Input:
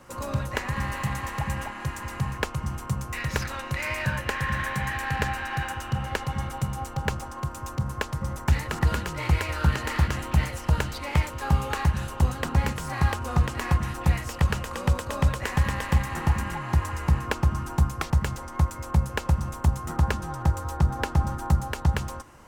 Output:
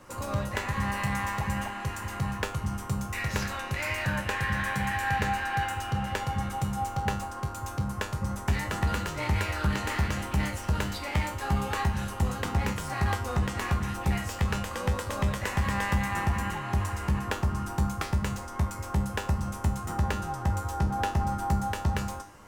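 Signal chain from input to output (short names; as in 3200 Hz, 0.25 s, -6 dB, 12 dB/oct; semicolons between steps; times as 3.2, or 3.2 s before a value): soft clip -17.5 dBFS, distortion -14 dB; resonator 100 Hz, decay 0.36 s, harmonics all, mix 80%; gain +8 dB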